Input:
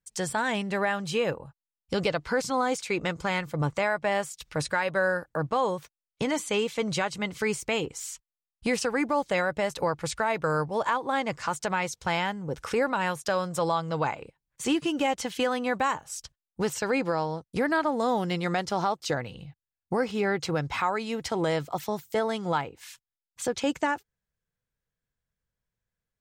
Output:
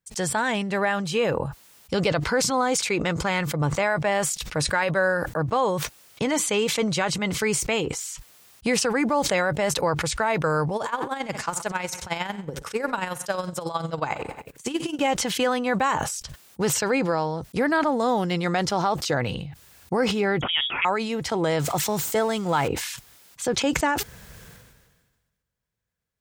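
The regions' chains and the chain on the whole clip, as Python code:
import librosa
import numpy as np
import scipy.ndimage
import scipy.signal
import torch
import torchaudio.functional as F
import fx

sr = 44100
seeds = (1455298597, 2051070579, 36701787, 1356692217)

y = fx.chain(x, sr, fx.high_shelf(hz=6600.0, db=8.5),
    fx.echo_feedback(ms=62, feedback_pct=54, wet_db=-17.5),
    fx.tremolo_db(hz=11.0, depth_db=32), at=(10.76, 14.99))
y = fx.chain(y, sr, fx.highpass(hz=170.0, slope=24),
    fx.freq_invert(carrier_hz=3500), at=(20.41, 20.85))
y = fx.chain(y, sr, fx.zero_step(step_db=-41.5),
    fx.peak_eq(hz=7700.0, db=6.5, octaves=0.66), at=(21.59, 22.68))
y = scipy.signal.sosfilt(scipy.signal.butter(2, 42.0, 'highpass', fs=sr, output='sos'), y)
y = fx.sustainer(y, sr, db_per_s=40.0)
y = F.gain(torch.from_numpy(y), 3.0).numpy()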